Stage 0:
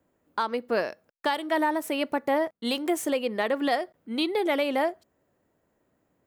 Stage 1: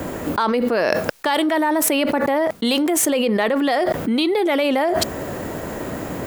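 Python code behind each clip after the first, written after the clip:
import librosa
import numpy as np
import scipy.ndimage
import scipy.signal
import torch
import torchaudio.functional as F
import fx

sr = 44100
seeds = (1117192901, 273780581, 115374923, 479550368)

y = fx.env_flatten(x, sr, amount_pct=100)
y = y * 10.0 ** (3.5 / 20.0)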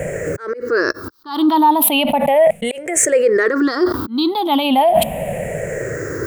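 y = fx.spec_ripple(x, sr, per_octave=0.51, drift_hz=-0.36, depth_db=23)
y = fx.peak_eq(y, sr, hz=5400.0, db=-3.0, octaves=1.8)
y = fx.auto_swell(y, sr, attack_ms=246.0)
y = y * 10.0 ** (-1.0 / 20.0)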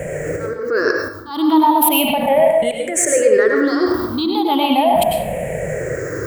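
y = fx.rev_plate(x, sr, seeds[0], rt60_s=0.61, hf_ratio=0.65, predelay_ms=85, drr_db=1.0)
y = y * 10.0 ** (-2.5 / 20.0)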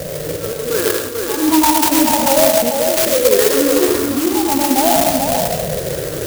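y = x + 10.0 ** (-4.5 / 20.0) * np.pad(x, (int(440 * sr / 1000.0), 0))[:len(x)]
y = fx.clock_jitter(y, sr, seeds[1], jitter_ms=0.13)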